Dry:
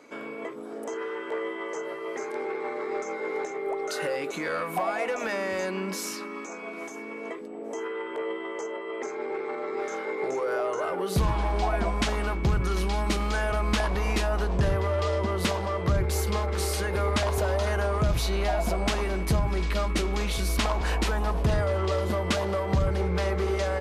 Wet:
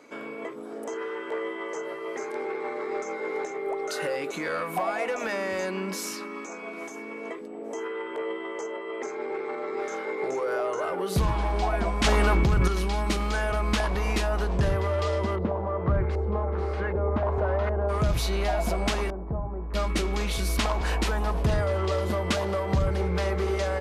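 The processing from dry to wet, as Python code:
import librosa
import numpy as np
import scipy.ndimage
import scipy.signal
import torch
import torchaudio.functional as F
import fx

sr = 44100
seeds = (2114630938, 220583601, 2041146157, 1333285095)

y = fx.env_flatten(x, sr, amount_pct=100, at=(12.04, 12.68))
y = fx.filter_lfo_lowpass(y, sr, shape='saw_up', hz=1.3, low_hz=630.0, high_hz=1900.0, q=0.96, at=(15.35, 17.88), fade=0.02)
y = fx.ladder_lowpass(y, sr, hz=1100.0, resonance_pct=30, at=(19.1, 19.74))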